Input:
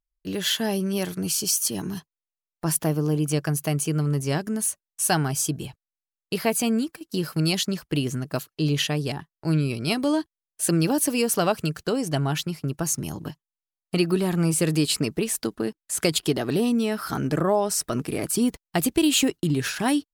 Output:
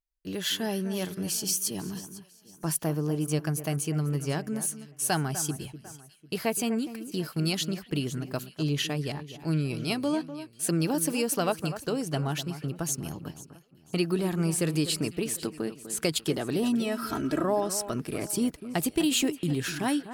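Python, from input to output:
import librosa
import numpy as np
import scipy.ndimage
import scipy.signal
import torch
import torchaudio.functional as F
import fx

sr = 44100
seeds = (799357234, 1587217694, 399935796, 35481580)

p1 = fx.comb(x, sr, ms=3.1, depth=0.7, at=(16.63, 17.44))
p2 = p1 + fx.echo_alternate(p1, sr, ms=249, hz=2200.0, feedback_pct=56, wet_db=-12, dry=0)
y = p2 * 10.0 ** (-5.0 / 20.0)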